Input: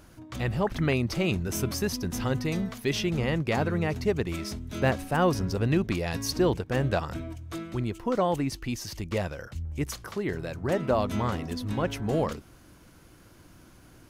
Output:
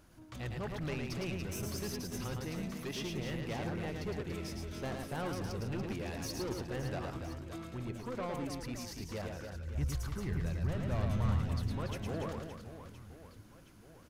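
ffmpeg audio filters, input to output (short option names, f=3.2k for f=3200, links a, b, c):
-filter_complex "[0:a]asoftclip=type=tanh:threshold=-26dB,asplit=3[a][b][c];[a]afade=t=out:st=9.74:d=0.02[d];[b]asubboost=boost=6.5:cutoff=130,afade=t=in:st=9.74:d=0.02,afade=t=out:st=11.66:d=0.02[e];[c]afade=t=in:st=11.66:d=0.02[f];[d][e][f]amix=inputs=3:normalize=0,aecho=1:1:110|286|567.6|1018|1739:0.631|0.398|0.251|0.158|0.1,volume=-9dB"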